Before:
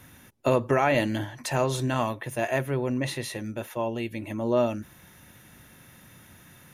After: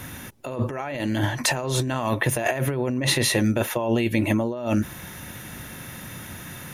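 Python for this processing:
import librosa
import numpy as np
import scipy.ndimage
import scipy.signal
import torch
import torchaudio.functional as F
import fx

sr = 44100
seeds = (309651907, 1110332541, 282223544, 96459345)

y = fx.over_compress(x, sr, threshold_db=-33.0, ratio=-1.0)
y = y * 10.0 ** (8.5 / 20.0)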